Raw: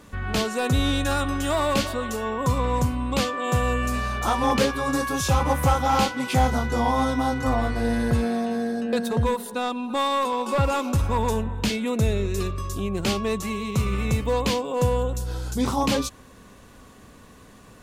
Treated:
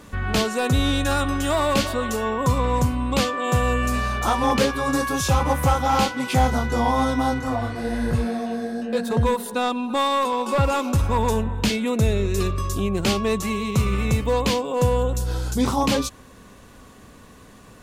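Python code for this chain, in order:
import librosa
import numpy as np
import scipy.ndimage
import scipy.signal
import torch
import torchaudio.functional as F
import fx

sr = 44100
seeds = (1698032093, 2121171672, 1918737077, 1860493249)

p1 = fx.rider(x, sr, range_db=10, speed_s=0.5)
p2 = x + F.gain(torch.from_numpy(p1), -0.5).numpy()
p3 = fx.detune_double(p2, sr, cents=34, at=(7.39, 9.08), fade=0.02)
y = F.gain(torch.from_numpy(p3), -3.5).numpy()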